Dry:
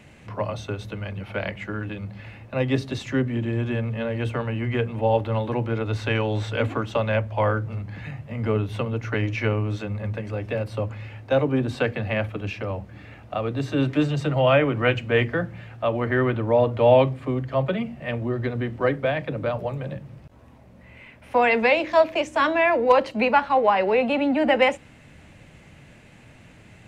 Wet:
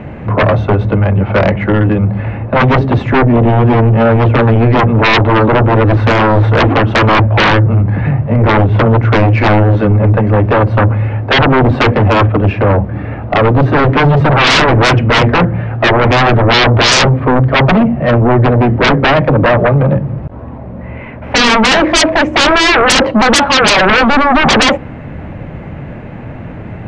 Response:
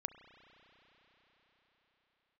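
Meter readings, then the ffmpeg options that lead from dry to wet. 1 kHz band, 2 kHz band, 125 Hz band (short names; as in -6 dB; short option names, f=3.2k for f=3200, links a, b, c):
+14.5 dB, +15.5 dB, +17.5 dB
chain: -af "lowpass=1.2k,aeval=exprs='0.562*sin(PI/2*10*val(0)/0.562)':c=same"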